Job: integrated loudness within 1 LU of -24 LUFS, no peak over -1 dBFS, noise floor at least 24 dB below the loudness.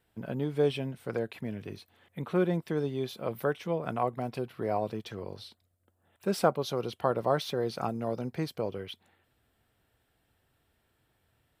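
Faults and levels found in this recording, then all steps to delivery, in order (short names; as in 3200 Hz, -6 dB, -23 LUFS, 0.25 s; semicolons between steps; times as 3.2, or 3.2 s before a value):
loudness -32.5 LUFS; peak -10.0 dBFS; loudness target -24.0 LUFS
-> gain +8.5 dB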